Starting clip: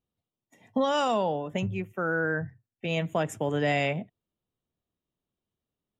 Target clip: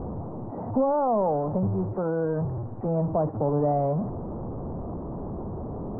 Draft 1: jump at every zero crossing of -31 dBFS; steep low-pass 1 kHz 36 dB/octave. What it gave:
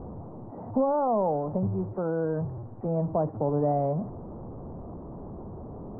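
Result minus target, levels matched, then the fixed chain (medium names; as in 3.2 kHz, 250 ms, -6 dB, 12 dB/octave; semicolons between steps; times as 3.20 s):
jump at every zero crossing: distortion -5 dB
jump at every zero crossing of -24.5 dBFS; steep low-pass 1 kHz 36 dB/octave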